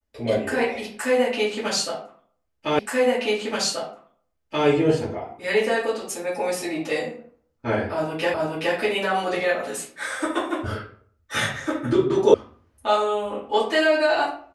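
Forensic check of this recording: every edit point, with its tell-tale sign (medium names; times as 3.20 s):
2.79 s: repeat of the last 1.88 s
8.34 s: repeat of the last 0.42 s
12.34 s: sound stops dead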